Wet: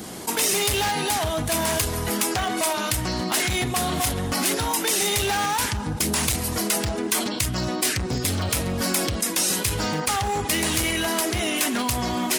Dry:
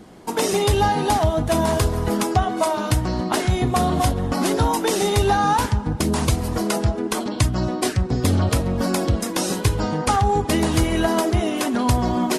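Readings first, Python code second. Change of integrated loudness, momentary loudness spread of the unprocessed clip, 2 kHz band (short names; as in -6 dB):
-2.0 dB, 4 LU, +2.5 dB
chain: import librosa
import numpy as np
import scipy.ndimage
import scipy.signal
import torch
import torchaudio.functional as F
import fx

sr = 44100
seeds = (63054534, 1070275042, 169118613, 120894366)

p1 = fx.rider(x, sr, range_db=10, speed_s=2.0)
p2 = x + F.gain(torch.from_numpy(p1), 0.5).numpy()
p3 = fx.dynamic_eq(p2, sr, hz=2200.0, q=1.1, threshold_db=-34.0, ratio=4.0, max_db=8)
p4 = fx.tremolo_shape(p3, sr, shape='saw_up', hz=1.1, depth_pct=35)
p5 = np.clip(10.0 ** (11.0 / 20.0) * p4, -1.0, 1.0) / 10.0 ** (11.0 / 20.0)
p6 = scipy.signal.sosfilt(scipy.signal.butter(2, 55.0, 'highpass', fs=sr, output='sos'), p5)
p7 = scipy.signal.lfilter([1.0, -0.8], [1.0], p6)
y = fx.env_flatten(p7, sr, amount_pct=50)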